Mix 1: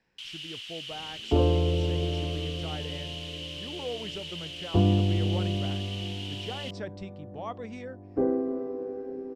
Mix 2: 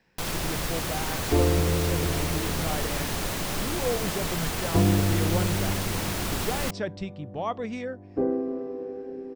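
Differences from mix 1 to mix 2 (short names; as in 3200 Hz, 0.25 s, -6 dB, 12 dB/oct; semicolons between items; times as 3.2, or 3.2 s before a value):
speech +7.0 dB; first sound: remove ladder band-pass 3100 Hz, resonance 85%; master: add bell 170 Hz +2.5 dB 0.37 oct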